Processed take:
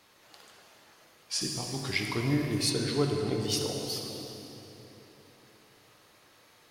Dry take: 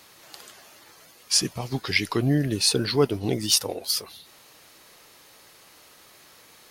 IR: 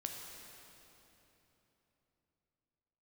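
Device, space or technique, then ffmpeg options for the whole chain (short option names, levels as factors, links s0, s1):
swimming-pool hall: -filter_complex "[1:a]atrim=start_sample=2205[s0];[0:a][s0]afir=irnorm=-1:irlink=0,highshelf=f=5600:g=-8,asettb=1/sr,asplit=3[s1][s2][s3];[s1]atrim=end=1.414[s4];[s2]atrim=start=1.41:end=2.7,asetpts=PTS-STARTPTS,afade=t=in:d=0.004:c=qsin,afade=t=out:st=1.286:d=0.004:c=qsin,highshelf=f=8500:g=11[s5];[s3]atrim=start=2.696[s6];[s4][s5]acrossfade=d=0.004:c1=hsin:c2=qsin[s7];[s7][s6]acrossfade=d=0.004:c1=qsin:c2=hsin,volume=0.596"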